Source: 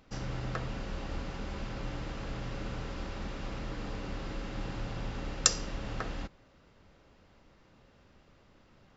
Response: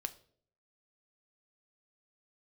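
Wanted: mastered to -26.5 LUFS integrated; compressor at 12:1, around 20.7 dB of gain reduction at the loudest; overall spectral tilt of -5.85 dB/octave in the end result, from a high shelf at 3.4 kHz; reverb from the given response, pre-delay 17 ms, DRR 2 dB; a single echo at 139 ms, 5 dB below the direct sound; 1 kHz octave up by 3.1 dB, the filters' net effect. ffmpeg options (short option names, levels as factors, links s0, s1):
-filter_complex "[0:a]equalizer=f=1000:t=o:g=5,highshelf=f=3400:g=-8.5,acompressor=threshold=0.00447:ratio=12,aecho=1:1:139:0.562,asplit=2[s0][s1];[1:a]atrim=start_sample=2205,adelay=17[s2];[s1][s2]afir=irnorm=-1:irlink=0,volume=0.891[s3];[s0][s3]amix=inputs=2:normalize=0,volume=15"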